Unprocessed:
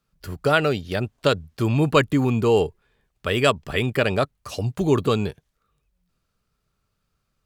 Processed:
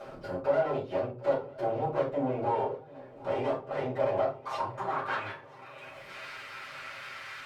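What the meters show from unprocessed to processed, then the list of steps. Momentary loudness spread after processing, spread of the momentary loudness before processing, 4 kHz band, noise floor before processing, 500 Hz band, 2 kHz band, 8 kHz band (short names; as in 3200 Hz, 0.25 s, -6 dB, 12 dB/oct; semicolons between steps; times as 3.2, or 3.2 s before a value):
14 LU, 10 LU, -17.5 dB, -75 dBFS, -7.0 dB, -11.5 dB, under -15 dB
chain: minimum comb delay 7.6 ms; upward compressor, threshold -22 dBFS; low shelf 490 Hz -8 dB; compressor 2:1, threshold -43 dBFS, peak gain reduction 14.5 dB; bell 110 Hz +5 dB 1.4 oct; overloaded stage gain 35 dB; band-pass sweep 540 Hz -> 2000 Hz, 3.92–5.56; swung echo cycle 0.986 s, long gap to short 3:1, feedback 57%, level -21 dB; shoebox room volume 170 m³, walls furnished, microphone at 5.1 m; gain +6 dB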